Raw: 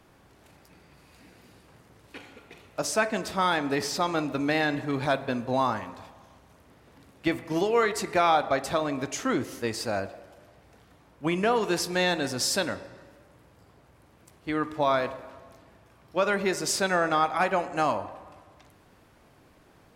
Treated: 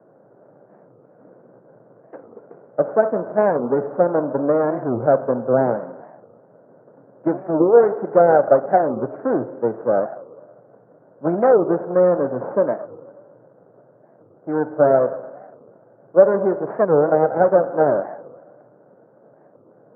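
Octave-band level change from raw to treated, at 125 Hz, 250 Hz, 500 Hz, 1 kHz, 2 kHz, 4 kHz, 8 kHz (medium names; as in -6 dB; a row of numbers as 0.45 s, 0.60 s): +5.5 dB, +6.5 dB, +12.5 dB, +4.5 dB, -4.0 dB, under -40 dB, under -40 dB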